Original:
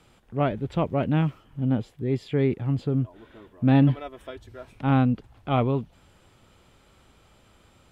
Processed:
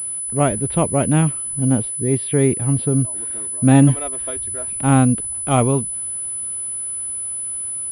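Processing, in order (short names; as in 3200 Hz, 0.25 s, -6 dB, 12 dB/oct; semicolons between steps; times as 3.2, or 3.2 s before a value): pulse-width modulation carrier 10000 Hz; gain +6.5 dB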